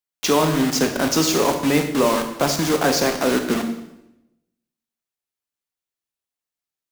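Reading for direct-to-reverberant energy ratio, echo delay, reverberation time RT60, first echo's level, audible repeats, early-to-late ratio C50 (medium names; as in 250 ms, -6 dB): 5.0 dB, no echo, 0.90 s, no echo, no echo, 8.0 dB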